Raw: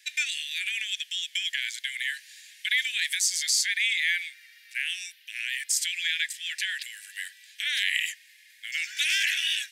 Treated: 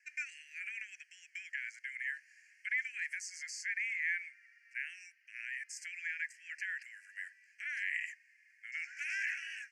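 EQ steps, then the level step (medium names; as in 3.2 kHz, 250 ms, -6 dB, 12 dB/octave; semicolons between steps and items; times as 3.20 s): Butterworth band-stop 3.6 kHz, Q 1.1; tape spacing loss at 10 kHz 26 dB; -1.5 dB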